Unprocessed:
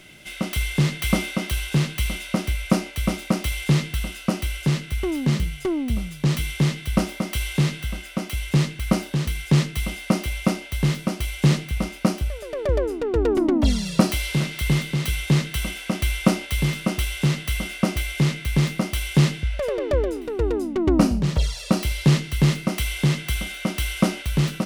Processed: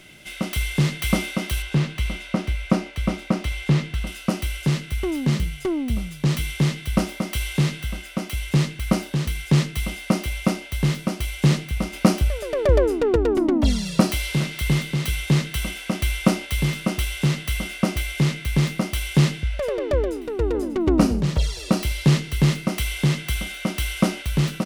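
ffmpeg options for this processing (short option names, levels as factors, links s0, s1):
-filter_complex "[0:a]asettb=1/sr,asplit=3[s0][s1][s2];[s0]atrim=end=1.624[s3];[s1]atrim=start=1.62:end=4.07,asetpts=PTS-STARTPTS,afade=t=in:d=0.004:c=qsin,afade=t=out:st=2.446:d=0.004:c=qsin,aemphasis=mode=reproduction:type=50kf[s4];[s2]atrim=start=4.066[s5];[s3][s4]acrossfade=d=0.004:c1=hsin:c2=qsin[s6];[s6][s5]acrossfade=d=0.004:c1=qsin:c2=hsin,asettb=1/sr,asplit=3[s7][s8][s9];[s7]atrim=end=11.934[s10];[s8]atrim=start=11.93:end=13.16,asetpts=PTS-STARTPTS,afade=t=in:d=0.004:c=qsin,afade=t=out:st=1.226:d=0.004:c=qsin,acontrast=28[s11];[s9]atrim=start=13.156[s12];[s10][s11]acrossfade=d=0.004:c1=hsin:c2=qsin[s13];[s13][s12]acrossfade=d=0.004:c1=qsin:c2=hsin,asplit=2[s14][s15];[s15]afade=t=in:st=19.95:d=0.01,afade=t=out:st=20.61:d=0.01,aecho=0:1:590|1180|1770|2360:0.281838|0.0986434|0.0345252|0.0120838[s16];[s14][s16]amix=inputs=2:normalize=0"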